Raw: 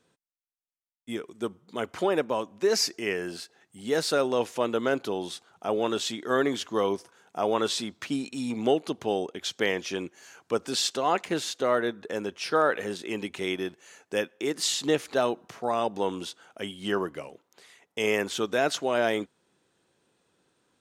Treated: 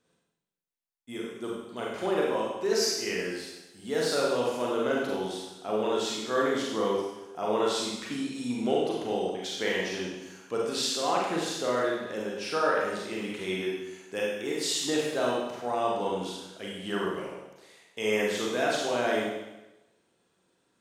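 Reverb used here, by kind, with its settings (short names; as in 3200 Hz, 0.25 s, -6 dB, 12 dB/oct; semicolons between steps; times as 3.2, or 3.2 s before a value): Schroeder reverb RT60 1 s, combs from 33 ms, DRR -4 dB; gain -6.5 dB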